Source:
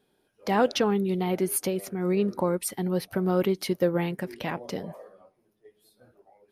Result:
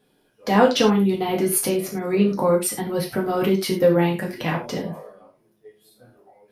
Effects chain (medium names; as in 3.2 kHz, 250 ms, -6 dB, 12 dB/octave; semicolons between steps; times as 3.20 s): gated-style reverb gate 130 ms falling, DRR -1.5 dB; trim +3 dB